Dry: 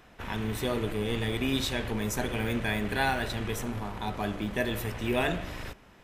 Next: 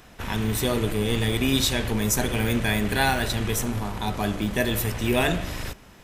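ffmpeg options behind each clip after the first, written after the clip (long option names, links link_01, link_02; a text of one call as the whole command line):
ffmpeg -i in.wav -af "bass=frequency=250:gain=3,treble=frequency=4000:gain=8,volume=4.5dB" out.wav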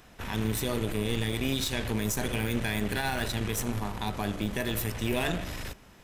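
ffmpeg -i in.wav -af "aeval=exprs='0.447*(cos(1*acos(clip(val(0)/0.447,-1,1)))-cos(1*PI/2))+0.0631*(cos(3*acos(clip(val(0)/0.447,-1,1)))-cos(3*PI/2))+0.0398*(cos(4*acos(clip(val(0)/0.447,-1,1)))-cos(4*PI/2))+0.0447*(cos(6*acos(clip(val(0)/0.447,-1,1)))-cos(6*PI/2))':channel_layout=same,alimiter=limit=-17.5dB:level=0:latency=1:release=79" out.wav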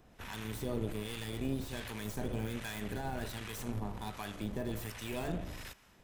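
ffmpeg -i in.wav -filter_complex "[0:a]acrossover=split=1500[link_01][link_02];[link_02]aeval=exprs='0.02*(abs(mod(val(0)/0.02+3,4)-2)-1)':channel_layout=same[link_03];[link_01][link_03]amix=inputs=2:normalize=0,acrossover=split=870[link_04][link_05];[link_04]aeval=exprs='val(0)*(1-0.7/2+0.7/2*cos(2*PI*1.3*n/s))':channel_layout=same[link_06];[link_05]aeval=exprs='val(0)*(1-0.7/2-0.7/2*cos(2*PI*1.3*n/s))':channel_layout=same[link_07];[link_06][link_07]amix=inputs=2:normalize=0,volume=-4.5dB" out.wav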